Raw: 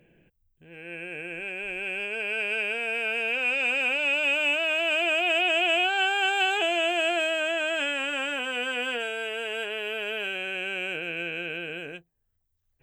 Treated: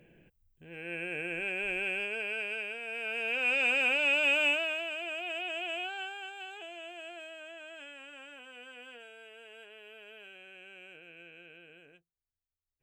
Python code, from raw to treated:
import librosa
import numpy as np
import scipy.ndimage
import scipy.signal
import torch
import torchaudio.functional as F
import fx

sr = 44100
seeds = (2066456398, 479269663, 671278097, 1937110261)

y = fx.gain(x, sr, db=fx.line((1.75, 0.0), (2.8, -11.0), (3.55, -2.0), (4.46, -2.0), (4.94, -13.0), (5.9, -13.0), (6.34, -20.0)))